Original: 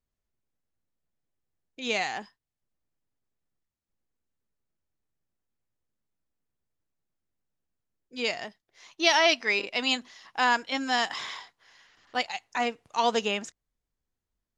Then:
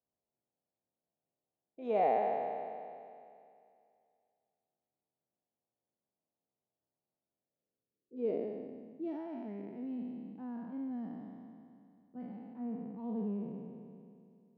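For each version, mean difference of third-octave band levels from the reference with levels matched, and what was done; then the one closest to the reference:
15.0 dB: peak hold with a decay on every bin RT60 2.43 s
high-pass filter 150 Hz 12 dB per octave
low-pass filter sweep 720 Hz → 200 Hz, 0:07.29–0:09.27
level −6.5 dB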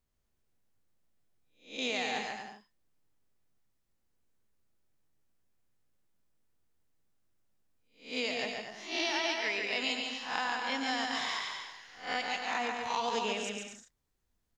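8.5 dB: peak hold with a rise ahead of every peak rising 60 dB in 0.36 s
downward compressor 10 to 1, threshold −33 dBFS, peak gain reduction 17.5 dB
on a send: bouncing-ball delay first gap 140 ms, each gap 0.7×, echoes 5
on the sum: level +2 dB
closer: second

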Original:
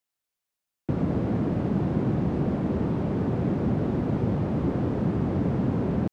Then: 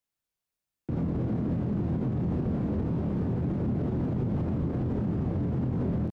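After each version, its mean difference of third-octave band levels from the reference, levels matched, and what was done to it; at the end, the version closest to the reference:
3.0 dB: low-shelf EQ 250 Hz +9.5 dB
double-tracking delay 24 ms −5 dB
brickwall limiter −17.5 dBFS, peak gain reduction 11 dB
level −4.5 dB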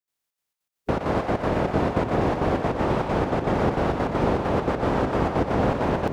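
7.5 dB: ceiling on every frequency bin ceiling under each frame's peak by 18 dB
gate pattern ".xxx.xx.x" 199 BPM −12 dB
on a send: echo with a time of its own for lows and highs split 490 Hz, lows 723 ms, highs 120 ms, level −6 dB
on the sum: level +3 dB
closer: first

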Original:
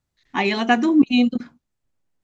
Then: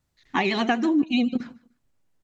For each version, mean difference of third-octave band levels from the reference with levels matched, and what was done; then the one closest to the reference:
3.0 dB: downward compressor 4 to 1, threshold −24 dBFS, peak gain reduction 13 dB
on a send: repeating echo 151 ms, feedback 26%, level −22 dB
on the sum: pitch vibrato 12 Hz 68 cents
level +3.5 dB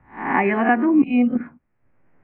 4.5 dB: peak hold with a rise ahead of every peak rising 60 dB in 0.32 s
Butterworth low-pass 2,300 Hz 48 dB per octave
multiband upward and downward compressor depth 70%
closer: first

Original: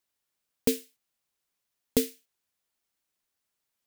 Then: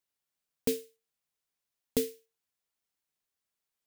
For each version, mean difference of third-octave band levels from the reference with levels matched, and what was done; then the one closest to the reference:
2.0 dB: tuned comb filter 150 Hz, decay 0.27 s, harmonics odd, mix 50%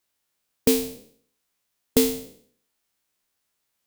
8.0 dB: peak hold with a decay on every bin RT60 0.57 s
level +4 dB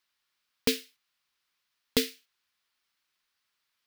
3.5 dB: flat-topped bell 2,300 Hz +10.5 dB 2.7 octaves
level −2.5 dB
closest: first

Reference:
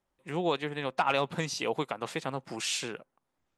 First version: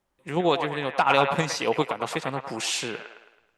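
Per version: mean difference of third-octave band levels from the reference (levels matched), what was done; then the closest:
3.0 dB: in parallel at −1.5 dB: output level in coarse steps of 15 dB
on the sum: delay with a band-pass on its return 108 ms, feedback 47%, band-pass 1,200 Hz, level −4 dB
level +2.5 dB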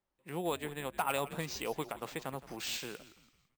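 6.0 dB: on a send: echo with shifted repeats 167 ms, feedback 43%, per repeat −95 Hz, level −16 dB
on the sum: bad sample-rate conversion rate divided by 4×, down none, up hold
level −6 dB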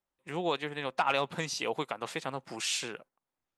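1.5 dB: noise gate −52 dBFS, range −7 dB
low-shelf EQ 450 Hz −5 dB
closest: third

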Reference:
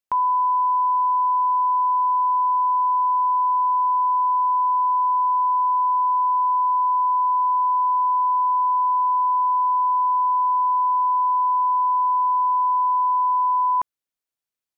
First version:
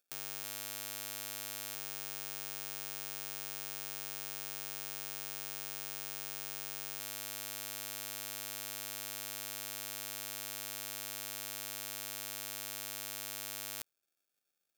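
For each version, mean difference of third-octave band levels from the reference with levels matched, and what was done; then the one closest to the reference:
29.0 dB: sample-rate reduction 1,000 Hz, jitter 0%
first difference
level +17.5 dB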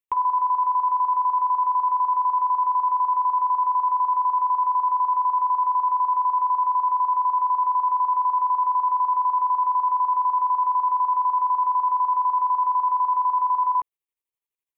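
2.5 dB: square-wave tremolo 12 Hz, depth 60%, duty 60%
phaser with its sweep stopped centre 990 Hz, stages 8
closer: second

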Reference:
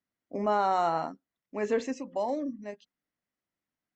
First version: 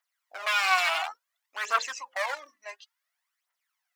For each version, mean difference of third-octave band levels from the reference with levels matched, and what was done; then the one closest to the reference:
13.5 dB: wave folding −27 dBFS
phase shifter 0.57 Hz, delay 3.2 ms, feedback 63%
high-pass filter 900 Hz 24 dB per octave
level +7.5 dB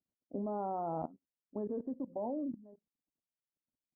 8.0 dB: dynamic equaliser 220 Hz, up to +4 dB, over −44 dBFS, Q 2
Gaussian smoothing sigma 11 samples
output level in coarse steps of 19 dB
level +1.5 dB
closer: second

